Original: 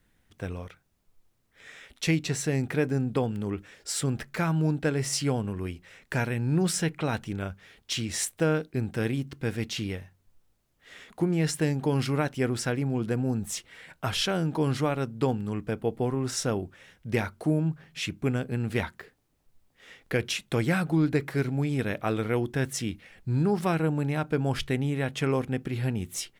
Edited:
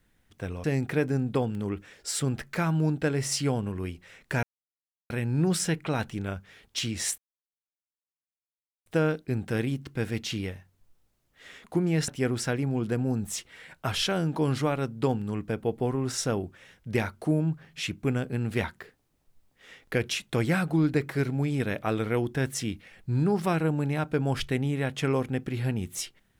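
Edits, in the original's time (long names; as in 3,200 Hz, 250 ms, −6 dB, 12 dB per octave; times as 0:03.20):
0:00.64–0:02.45: remove
0:06.24: splice in silence 0.67 s
0:08.32: splice in silence 1.68 s
0:11.54–0:12.27: remove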